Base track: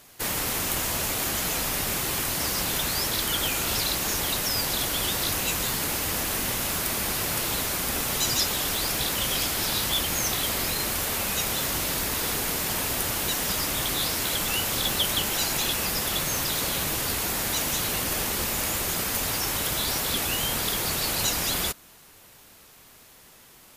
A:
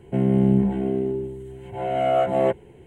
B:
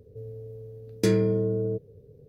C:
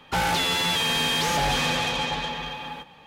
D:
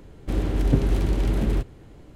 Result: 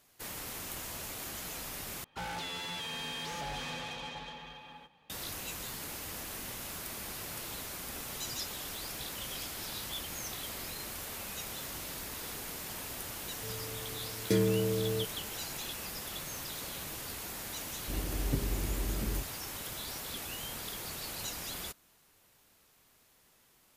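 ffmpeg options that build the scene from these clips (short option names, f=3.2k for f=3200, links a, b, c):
-filter_complex "[0:a]volume=-14dB,asplit=2[a][b];[a]atrim=end=2.044[c];[3:a]atrim=end=3.06,asetpts=PTS-STARTPTS,volume=-15.5dB[d];[b]atrim=start=5.096[e];[2:a]atrim=end=2.28,asetpts=PTS-STARTPTS,volume=-5.5dB,afade=t=in:d=0.004:c=hsin,afade=t=out:st=2.276:d=0.004:c=hsin,adelay=13270[f];[4:a]atrim=end=2.15,asetpts=PTS-STARTPTS,volume=-12.5dB,afade=t=in:d=0.004:c=hsin,afade=t=out:st=2.146:d=0.004:c=hsin,adelay=17600[g];[c][d]acrossfade=d=0.004:c1=hsin:c2=hsin[h];[h][e]acrossfade=d=0.004:c1=hsin:c2=hsin[i];[i][f][g]amix=inputs=3:normalize=0"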